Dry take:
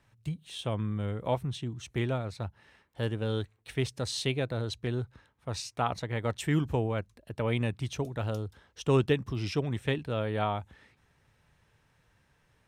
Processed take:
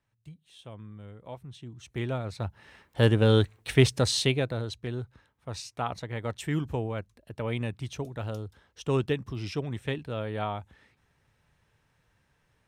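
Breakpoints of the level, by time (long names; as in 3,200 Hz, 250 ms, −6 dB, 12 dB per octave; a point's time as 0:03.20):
0:01.36 −12.5 dB
0:02.03 −1.5 dB
0:03.06 +10.5 dB
0:03.91 +10.5 dB
0:04.76 −2 dB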